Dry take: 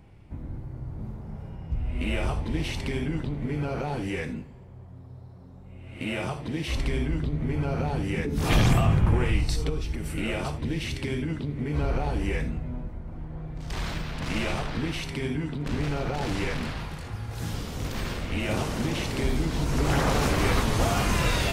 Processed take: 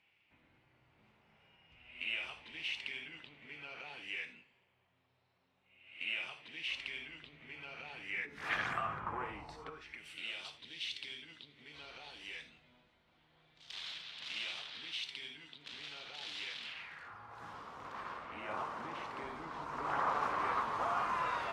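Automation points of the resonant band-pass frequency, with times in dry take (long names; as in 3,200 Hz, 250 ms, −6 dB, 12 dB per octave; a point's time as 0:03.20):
resonant band-pass, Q 3.1
0:07.85 2,700 Hz
0:09.52 860 Hz
0:10.16 3,500 Hz
0:16.61 3,500 Hz
0:17.20 1,100 Hz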